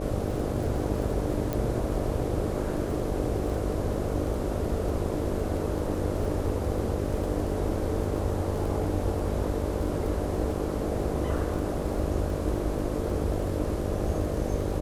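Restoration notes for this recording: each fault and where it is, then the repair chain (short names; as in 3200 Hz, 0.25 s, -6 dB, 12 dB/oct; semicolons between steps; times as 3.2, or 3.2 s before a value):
buzz 50 Hz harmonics 12 -33 dBFS
crackle 21/s -34 dBFS
1.53 pop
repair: de-click; de-hum 50 Hz, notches 12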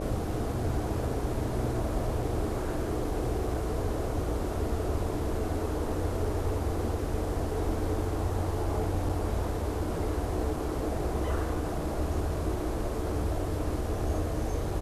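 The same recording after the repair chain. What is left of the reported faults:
none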